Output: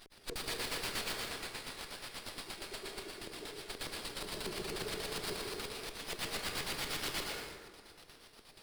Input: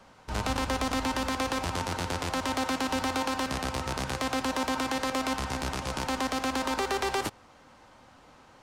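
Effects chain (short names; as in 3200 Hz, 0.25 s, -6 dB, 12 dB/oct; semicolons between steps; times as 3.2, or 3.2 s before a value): notches 50/100/150/200/250/300/350 Hz; spectral gate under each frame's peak -30 dB weak; compressor 6:1, threshold -58 dBFS, peak gain reduction 14 dB; 1.15–3.7 ladder high-pass 210 Hz, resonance 40%; LFO low-pass square 8.4 Hz 410–4700 Hz; sine folder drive 11 dB, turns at -45 dBFS; plate-style reverb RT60 1.8 s, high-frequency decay 0.45×, pre-delay 95 ms, DRR -1.5 dB; running maximum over 5 samples; gain +12.5 dB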